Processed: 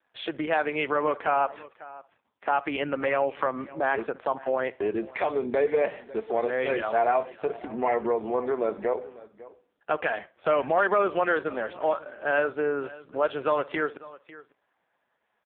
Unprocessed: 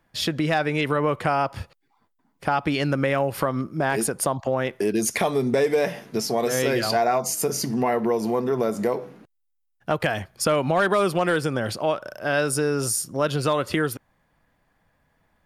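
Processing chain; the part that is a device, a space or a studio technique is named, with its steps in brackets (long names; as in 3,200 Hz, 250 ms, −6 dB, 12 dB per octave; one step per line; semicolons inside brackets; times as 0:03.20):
0:05.03–0:06.44: de-essing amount 50%
tape delay 61 ms, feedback 37%, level −20 dB, low-pass 3,000 Hz
satellite phone (band-pass filter 400–3,200 Hz; single-tap delay 548 ms −19 dB; AMR narrowband 5.15 kbit/s 8,000 Hz)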